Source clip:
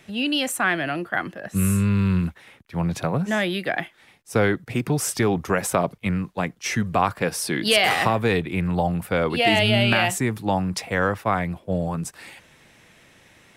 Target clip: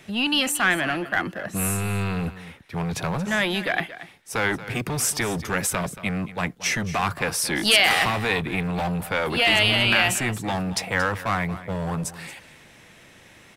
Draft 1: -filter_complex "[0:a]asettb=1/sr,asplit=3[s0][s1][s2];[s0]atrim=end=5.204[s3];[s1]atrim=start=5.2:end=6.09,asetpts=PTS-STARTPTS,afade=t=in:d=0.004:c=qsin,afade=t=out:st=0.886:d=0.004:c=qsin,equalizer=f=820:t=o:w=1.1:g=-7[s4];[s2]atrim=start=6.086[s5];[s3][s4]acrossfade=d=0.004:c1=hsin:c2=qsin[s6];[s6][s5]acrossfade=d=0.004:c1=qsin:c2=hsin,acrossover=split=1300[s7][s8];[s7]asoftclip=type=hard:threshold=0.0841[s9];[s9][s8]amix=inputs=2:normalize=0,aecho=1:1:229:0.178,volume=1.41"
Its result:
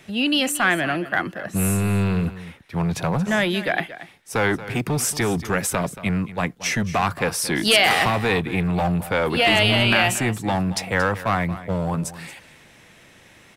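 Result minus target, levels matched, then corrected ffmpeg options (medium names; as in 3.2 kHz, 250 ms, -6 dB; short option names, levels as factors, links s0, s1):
hard clipper: distortion -4 dB
-filter_complex "[0:a]asettb=1/sr,asplit=3[s0][s1][s2];[s0]atrim=end=5.204[s3];[s1]atrim=start=5.2:end=6.09,asetpts=PTS-STARTPTS,afade=t=in:d=0.004:c=qsin,afade=t=out:st=0.886:d=0.004:c=qsin,equalizer=f=820:t=o:w=1.1:g=-7[s4];[s2]atrim=start=6.086[s5];[s3][s4]acrossfade=d=0.004:c1=hsin:c2=qsin[s6];[s6][s5]acrossfade=d=0.004:c1=qsin:c2=hsin,acrossover=split=1300[s7][s8];[s7]asoftclip=type=hard:threshold=0.0398[s9];[s9][s8]amix=inputs=2:normalize=0,aecho=1:1:229:0.178,volume=1.41"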